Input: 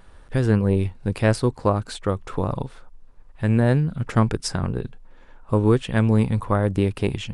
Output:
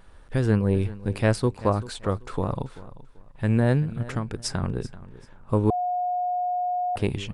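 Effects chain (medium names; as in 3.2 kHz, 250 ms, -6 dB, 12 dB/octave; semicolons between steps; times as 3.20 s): 3.82–4.38 s: compression 6:1, threshold -22 dBFS, peak gain reduction 10 dB; feedback delay 387 ms, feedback 26%, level -17.5 dB; 5.70–6.96 s: bleep 720 Hz -20.5 dBFS; trim -2.5 dB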